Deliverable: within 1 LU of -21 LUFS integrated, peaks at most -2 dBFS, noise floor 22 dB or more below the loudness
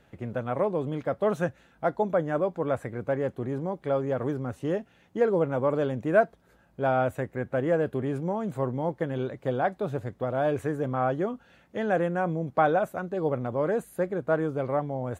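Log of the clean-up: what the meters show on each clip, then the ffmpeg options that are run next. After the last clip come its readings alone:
loudness -28.5 LUFS; peak -8.5 dBFS; loudness target -21.0 LUFS
-> -af "volume=7.5dB,alimiter=limit=-2dB:level=0:latency=1"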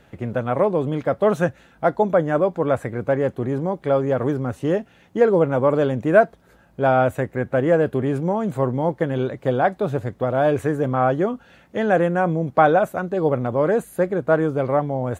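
loudness -21.0 LUFS; peak -2.0 dBFS; noise floor -54 dBFS

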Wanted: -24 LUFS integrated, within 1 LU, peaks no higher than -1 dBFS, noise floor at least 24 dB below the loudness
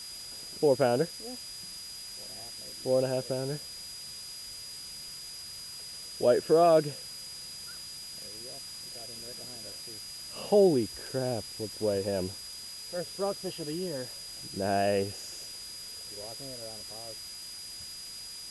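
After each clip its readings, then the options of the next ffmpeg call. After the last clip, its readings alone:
steady tone 4900 Hz; tone level -42 dBFS; noise floor -43 dBFS; noise floor target -56 dBFS; loudness -32.0 LUFS; peak -13.0 dBFS; loudness target -24.0 LUFS
-> -af "bandreject=f=4.9k:w=30"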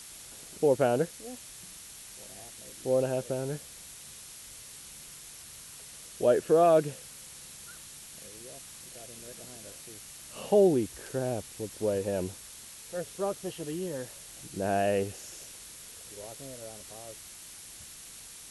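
steady tone none; noise floor -48 dBFS; noise floor target -54 dBFS
-> -af "afftdn=nr=6:nf=-48"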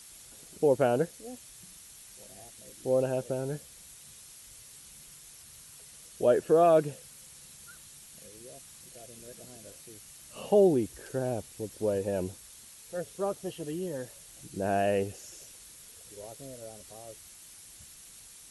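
noise floor -52 dBFS; noise floor target -53 dBFS
-> -af "afftdn=nr=6:nf=-52"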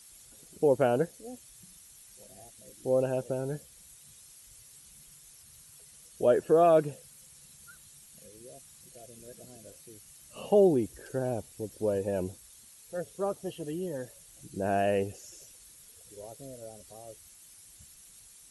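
noise floor -55 dBFS; loudness -29.0 LUFS; peak -13.0 dBFS; loudness target -24.0 LUFS
-> -af "volume=5dB"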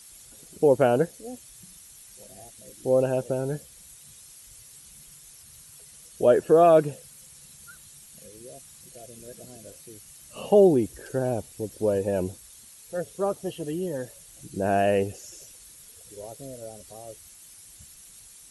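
loudness -24.0 LUFS; peak -8.0 dBFS; noise floor -50 dBFS

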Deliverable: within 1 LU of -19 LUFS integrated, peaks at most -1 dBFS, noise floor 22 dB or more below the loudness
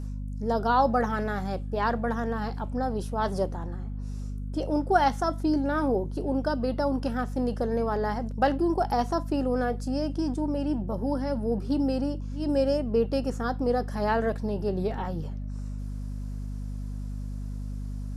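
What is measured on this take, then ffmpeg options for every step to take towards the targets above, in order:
hum 50 Hz; harmonics up to 250 Hz; hum level -31 dBFS; loudness -28.5 LUFS; peak -9.0 dBFS; loudness target -19.0 LUFS
-> -af "bandreject=f=50:t=h:w=4,bandreject=f=100:t=h:w=4,bandreject=f=150:t=h:w=4,bandreject=f=200:t=h:w=4,bandreject=f=250:t=h:w=4"
-af "volume=9.5dB,alimiter=limit=-1dB:level=0:latency=1"

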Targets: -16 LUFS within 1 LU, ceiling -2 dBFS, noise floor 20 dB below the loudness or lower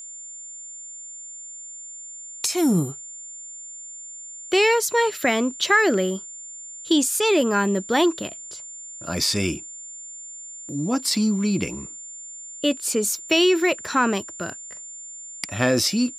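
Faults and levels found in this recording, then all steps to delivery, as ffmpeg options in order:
steady tone 7200 Hz; tone level -36 dBFS; loudness -22.0 LUFS; peak -3.5 dBFS; loudness target -16.0 LUFS
-> -af "bandreject=f=7.2k:w=30"
-af "volume=6dB,alimiter=limit=-2dB:level=0:latency=1"

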